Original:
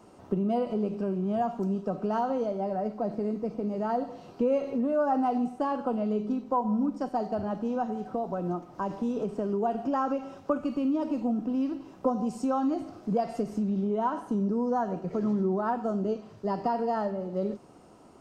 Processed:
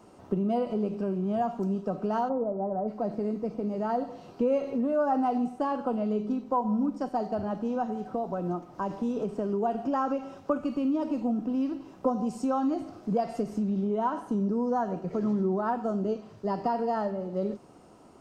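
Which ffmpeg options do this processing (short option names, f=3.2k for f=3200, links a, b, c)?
-filter_complex "[0:a]asplit=3[a][b][c];[a]afade=t=out:st=2.28:d=0.02[d];[b]lowpass=f=1.2k:w=0.5412,lowpass=f=1.2k:w=1.3066,afade=t=in:st=2.28:d=0.02,afade=t=out:st=2.87:d=0.02[e];[c]afade=t=in:st=2.87:d=0.02[f];[d][e][f]amix=inputs=3:normalize=0"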